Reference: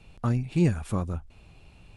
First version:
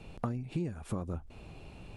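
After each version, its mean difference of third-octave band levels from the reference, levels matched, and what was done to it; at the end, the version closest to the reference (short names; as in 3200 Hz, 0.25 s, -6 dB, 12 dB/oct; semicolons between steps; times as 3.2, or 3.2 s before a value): 7.5 dB: bell 390 Hz +7.5 dB 2.8 oct; compressor 16:1, threshold -32 dBFS, peak gain reduction 21 dB; gain +1 dB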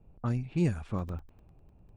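2.5 dB: low-pass opened by the level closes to 640 Hz, open at -19.5 dBFS; crackling interface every 0.10 s, samples 64, zero, from 0.89; gain -5 dB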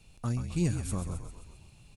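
5.5 dB: tone controls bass +3 dB, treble +15 dB; frequency-shifting echo 0.132 s, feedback 58%, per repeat -41 Hz, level -8.5 dB; gain -8.5 dB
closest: second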